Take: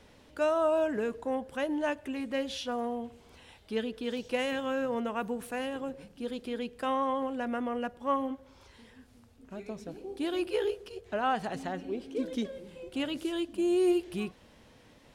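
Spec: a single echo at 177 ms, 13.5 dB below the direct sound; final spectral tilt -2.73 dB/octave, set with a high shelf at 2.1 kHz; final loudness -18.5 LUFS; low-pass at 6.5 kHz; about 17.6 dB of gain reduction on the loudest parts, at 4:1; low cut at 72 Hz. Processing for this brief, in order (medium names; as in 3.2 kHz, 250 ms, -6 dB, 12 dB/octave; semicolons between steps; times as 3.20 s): high-pass 72 Hz; low-pass 6.5 kHz; treble shelf 2.1 kHz +6 dB; compression 4:1, threshold -45 dBFS; delay 177 ms -13.5 dB; trim +28 dB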